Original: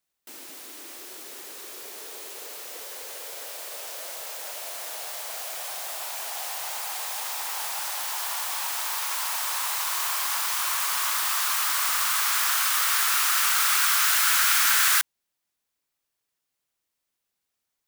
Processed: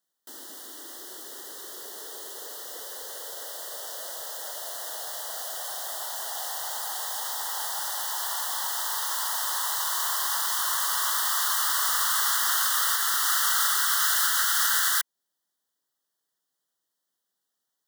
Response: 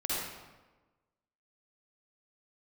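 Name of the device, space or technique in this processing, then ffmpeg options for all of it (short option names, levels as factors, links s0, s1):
PA system with an anti-feedback notch: -af "highpass=160,asuperstop=centerf=2400:order=12:qfactor=2.6,alimiter=limit=0.224:level=0:latency=1:release=214"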